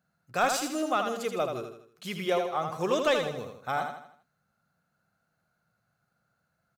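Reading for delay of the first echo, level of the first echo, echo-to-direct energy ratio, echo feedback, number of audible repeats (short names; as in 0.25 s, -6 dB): 80 ms, -6.0 dB, -5.0 dB, 43%, 4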